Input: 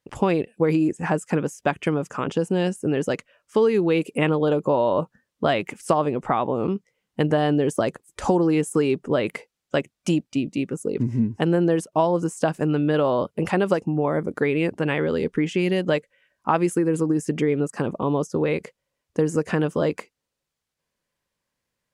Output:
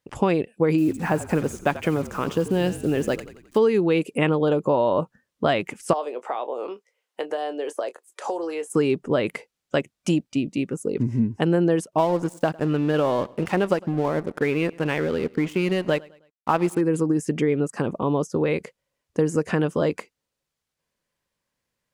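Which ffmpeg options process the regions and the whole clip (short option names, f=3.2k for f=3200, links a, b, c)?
-filter_complex "[0:a]asettb=1/sr,asplit=3[a][b][c];[a]atrim=end=0.784[d];[b]atrim=start=0.78:end=3.58,asetpts=PTS-STARTPTS,afade=t=in:d=0.004:c=qsin,afade=t=out:st=2.796:d=0.004:c=qsin,acrusher=bits=6:mix=0:aa=0.5,asplit=6[e][f][g][h][i][j];[f]adelay=88,afreqshift=-46,volume=-14.5dB[k];[g]adelay=176,afreqshift=-92,volume=-20.3dB[l];[h]adelay=264,afreqshift=-138,volume=-26.2dB[m];[i]adelay=352,afreqshift=-184,volume=-32dB[n];[j]adelay=440,afreqshift=-230,volume=-37.9dB[o];[e][k][l][m][n][o]amix=inputs=6:normalize=0,atrim=end_sample=123480[p];[c]atrim=start=3.576[q];[d][p]acrossfade=d=0.004:c1=hsin:c2=qsin[r];[r][q]acrossfade=d=0.004:c1=qsin:c2=hsin,asettb=1/sr,asplit=3[s][t][u];[s]atrim=end=5.934[v];[t]atrim=start=5.93:end=8.7,asetpts=PTS-STARTPTS,afade=t=in:d=0.004:c=qsin,afade=t=out:st=2.766:d=0.004:c=qsin,highpass=f=440:w=0.5412,highpass=f=440:w=1.3066,asplit=2[w][x];[x]adelay=24,volume=-12dB[y];[w][y]amix=inputs=2:normalize=0,atrim=end_sample=122157,acrossover=split=870|2700[z][aa][ab];[z]acompressor=threshold=-25dB:ratio=4[ac];[aa]acompressor=threshold=-41dB:ratio=4[ad];[ab]acompressor=threshold=-45dB:ratio=4[ae];[ac][ad][ae]amix=inputs=3:normalize=0[af];[u]atrim=start=8.696[ag];[v][af]acrossfade=d=0.004:c1=hsin:c2=qsin[ah];[ah][ag]acrossfade=d=0.004:c1=qsin:c2=hsin,asettb=1/sr,asplit=3[ai][aj][ak];[ai]atrim=end=11.984[al];[aj]atrim=start=11.98:end=16.81,asetpts=PTS-STARTPTS,afade=t=in:d=0.004:c=qsin,afade=t=out:st=4.826:d=0.004:c=qsin,aeval=exprs='sgn(val(0))*max(abs(val(0))-0.0141,0)':c=same,aecho=1:1:105|210|315:0.0668|0.0274|0.0112,atrim=end_sample=213003[am];[ak]atrim=start=16.806[an];[al][am]acrossfade=d=0.004:c1=hsin:c2=qsin[ao];[ao][an]acrossfade=d=0.004:c1=qsin:c2=hsin"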